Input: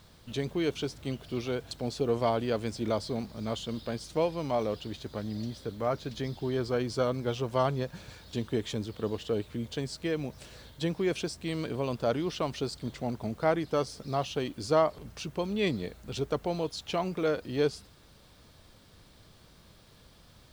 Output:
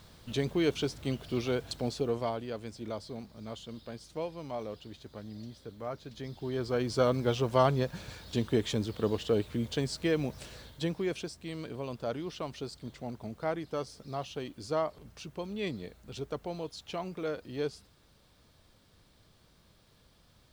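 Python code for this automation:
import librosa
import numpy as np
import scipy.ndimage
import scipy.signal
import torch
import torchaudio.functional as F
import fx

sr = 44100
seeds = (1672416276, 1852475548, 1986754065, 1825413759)

y = fx.gain(x, sr, db=fx.line((1.79, 1.5), (2.45, -8.5), (6.09, -8.5), (7.07, 2.5), (10.41, 2.5), (11.36, -6.5)))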